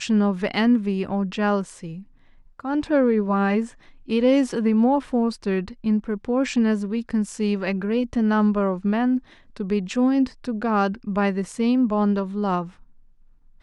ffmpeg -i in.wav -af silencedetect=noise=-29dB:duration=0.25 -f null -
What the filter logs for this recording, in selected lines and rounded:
silence_start: 1.94
silence_end: 2.60 | silence_duration: 0.66
silence_start: 3.65
silence_end: 4.09 | silence_duration: 0.44
silence_start: 9.18
silence_end: 9.56 | silence_duration: 0.38
silence_start: 12.65
silence_end: 13.63 | silence_duration: 0.97